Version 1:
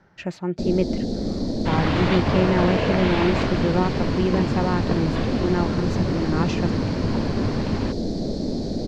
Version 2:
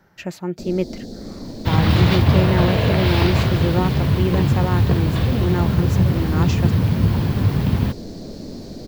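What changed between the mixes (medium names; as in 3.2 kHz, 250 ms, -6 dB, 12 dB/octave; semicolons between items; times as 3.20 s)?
first sound -8.0 dB; second sound: add tone controls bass +11 dB, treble +11 dB; master: remove distance through air 89 m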